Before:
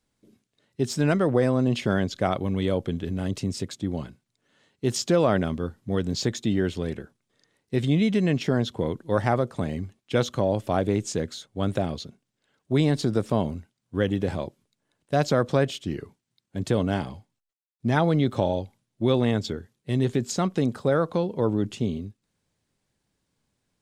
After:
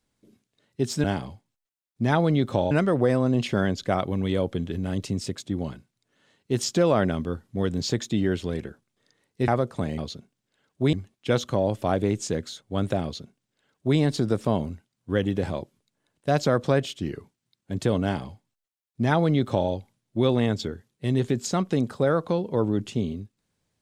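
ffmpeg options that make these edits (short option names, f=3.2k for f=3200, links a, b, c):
-filter_complex "[0:a]asplit=6[a][b][c][d][e][f];[a]atrim=end=1.042[g];[b]atrim=start=16.878:end=18.552[h];[c]atrim=start=1.038:end=7.812[i];[d]atrim=start=9.278:end=9.782[j];[e]atrim=start=11.878:end=12.832[k];[f]atrim=start=9.778[l];[g][h]acrossfade=d=0.004:c1=hsin:c2=hsin[m];[m][i]acrossfade=d=0.004:c1=hsin:c2=hsin[n];[n][j]acrossfade=d=0.004:c1=hsin:c2=hsin[o];[o][k]acrossfade=d=0.004:c1=hsin:c2=hsin[p];[p][l]acrossfade=d=0.004:c1=hsin:c2=hsin"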